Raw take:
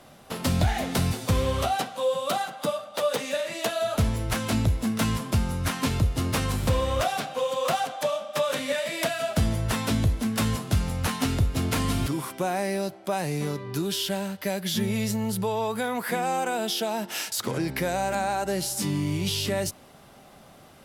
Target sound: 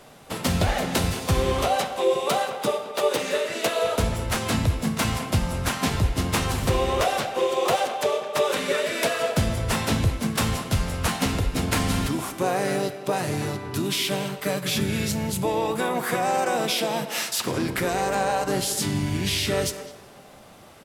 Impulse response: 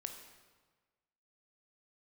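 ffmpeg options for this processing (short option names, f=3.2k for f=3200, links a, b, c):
-filter_complex "[0:a]asplit=3[a][b][c];[b]asetrate=29433,aresample=44100,atempo=1.49831,volume=-9dB[d];[c]asetrate=33038,aresample=44100,atempo=1.33484,volume=-5dB[e];[a][d][e]amix=inputs=3:normalize=0,asplit=2[f][g];[g]adelay=210,highpass=300,lowpass=3.4k,asoftclip=type=hard:threshold=-19dB,volume=-12dB[h];[f][h]amix=inputs=2:normalize=0,asplit=2[i][j];[1:a]atrim=start_sample=2205,lowshelf=f=160:g=-11.5[k];[j][k]afir=irnorm=-1:irlink=0,volume=2.5dB[l];[i][l]amix=inputs=2:normalize=0,volume=-3.5dB"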